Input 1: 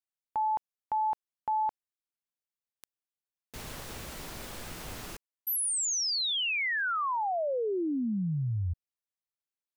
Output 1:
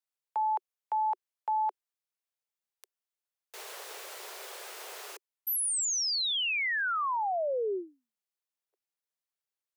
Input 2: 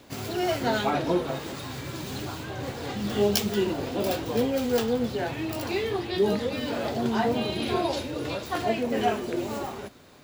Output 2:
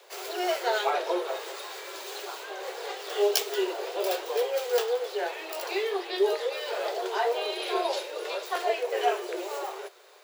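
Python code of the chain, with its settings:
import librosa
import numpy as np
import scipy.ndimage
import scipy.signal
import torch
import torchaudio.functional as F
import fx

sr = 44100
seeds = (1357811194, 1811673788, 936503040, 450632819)

y = scipy.signal.sosfilt(scipy.signal.butter(16, 370.0, 'highpass', fs=sr, output='sos'), x)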